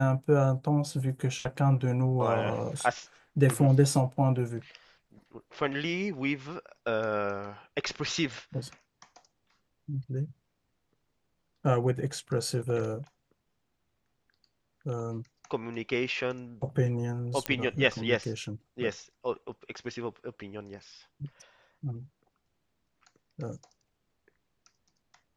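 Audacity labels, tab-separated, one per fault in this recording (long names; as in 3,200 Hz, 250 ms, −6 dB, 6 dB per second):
17.460000	17.460000	click −12 dBFS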